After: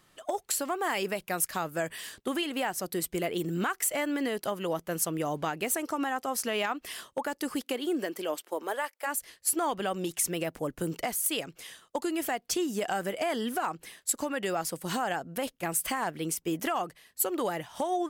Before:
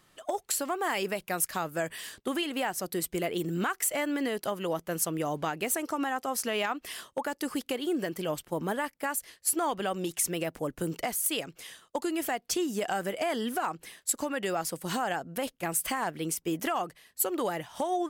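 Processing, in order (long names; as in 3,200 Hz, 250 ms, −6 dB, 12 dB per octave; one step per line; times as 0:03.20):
0:07.62–0:09.06: high-pass filter 160 Hz → 520 Hz 24 dB per octave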